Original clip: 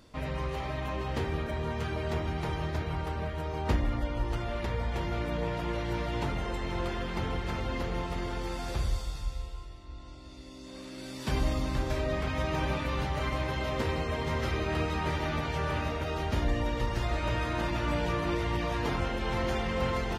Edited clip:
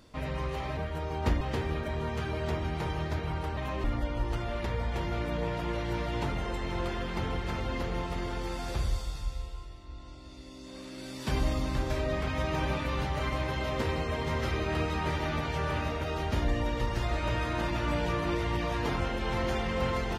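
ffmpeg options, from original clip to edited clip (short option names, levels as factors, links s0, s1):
-filter_complex "[0:a]asplit=5[s0][s1][s2][s3][s4];[s0]atrim=end=0.772[s5];[s1]atrim=start=3.198:end=3.842[s6];[s2]atrim=start=1.038:end=3.202[s7];[s3]atrim=start=0.768:end=1.042[s8];[s4]atrim=start=3.838[s9];[s5][s6]acrossfade=d=0.004:c1=hsin:c2=hsin[s10];[s10][s7]acrossfade=d=0.004:c1=hsin:c2=hsin[s11];[s11][s8]acrossfade=d=0.004:c1=hsin:c2=hsin[s12];[s12][s9]acrossfade=d=0.004:c1=hsin:c2=hsin"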